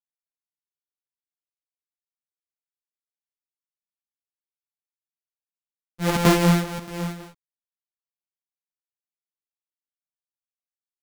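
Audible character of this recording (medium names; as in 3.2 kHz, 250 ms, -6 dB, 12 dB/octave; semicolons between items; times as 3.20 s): a buzz of ramps at a fixed pitch in blocks of 256 samples; chopped level 1.6 Hz, depth 65%, duty 85%; a quantiser's noise floor 10-bit, dither none; a shimmering, thickened sound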